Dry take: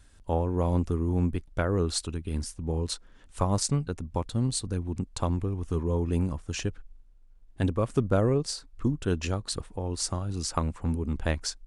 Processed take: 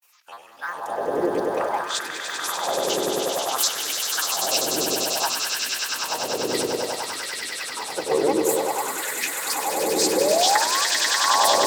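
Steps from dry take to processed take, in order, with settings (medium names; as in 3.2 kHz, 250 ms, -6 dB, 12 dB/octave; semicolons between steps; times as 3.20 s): peaking EQ 9.1 kHz +10.5 dB 2.8 oct; granulator 100 ms, spray 16 ms, pitch spread up and down by 12 st; painted sound rise, 10.17–10.85 s, 480–1100 Hz -21 dBFS; formant-preserving pitch shift +1.5 st; echo with a slow build-up 98 ms, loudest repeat 8, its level -5.5 dB; LFO high-pass sine 0.57 Hz 390–1800 Hz; modulated delay 298 ms, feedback 74%, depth 186 cents, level -17.5 dB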